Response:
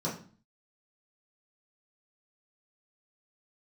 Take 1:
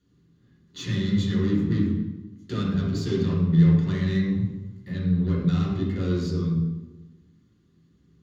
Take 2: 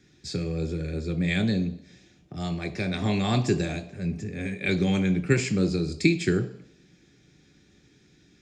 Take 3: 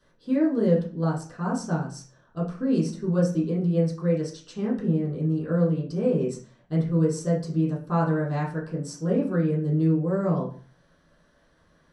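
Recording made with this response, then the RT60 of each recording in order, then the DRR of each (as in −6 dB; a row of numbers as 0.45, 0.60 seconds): 3; 1.1, 0.70, 0.40 seconds; −6.5, 7.5, −7.5 decibels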